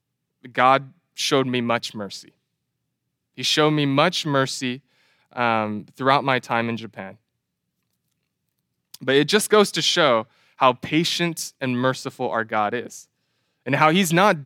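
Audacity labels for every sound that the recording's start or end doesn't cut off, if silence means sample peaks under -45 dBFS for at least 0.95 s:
3.370000	7.150000	sound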